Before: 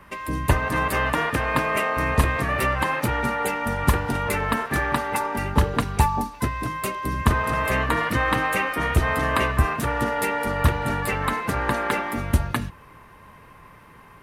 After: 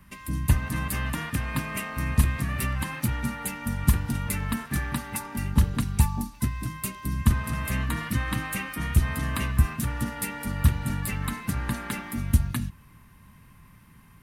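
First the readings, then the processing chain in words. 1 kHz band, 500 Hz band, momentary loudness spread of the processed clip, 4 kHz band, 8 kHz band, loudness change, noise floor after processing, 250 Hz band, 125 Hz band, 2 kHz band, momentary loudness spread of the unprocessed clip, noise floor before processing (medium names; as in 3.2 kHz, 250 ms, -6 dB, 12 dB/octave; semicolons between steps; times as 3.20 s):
-13.0 dB, -16.0 dB, 7 LU, -5.5 dB, +0.5 dB, -4.5 dB, -53 dBFS, -2.5 dB, 0.0 dB, -9.5 dB, 4 LU, -48 dBFS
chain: FFT filter 220 Hz 0 dB, 460 Hz -18 dB, 11 kHz +2 dB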